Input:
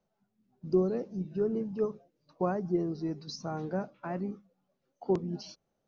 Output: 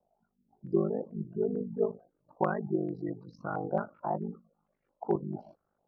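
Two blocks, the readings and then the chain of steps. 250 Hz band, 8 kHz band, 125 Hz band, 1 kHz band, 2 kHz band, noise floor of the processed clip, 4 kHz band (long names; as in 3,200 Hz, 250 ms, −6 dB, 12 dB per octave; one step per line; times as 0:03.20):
−1.5 dB, can't be measured, −1.0 dB, +4.0 dB, +4.0 dB, −81 dBFS, below −20 dB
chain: gate on every frequency bin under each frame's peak −30 dB strong
ring modulation 25 Hz
low-pass on a step sequencer 4.5 Hz 730–2,100 Hz
level +1 dB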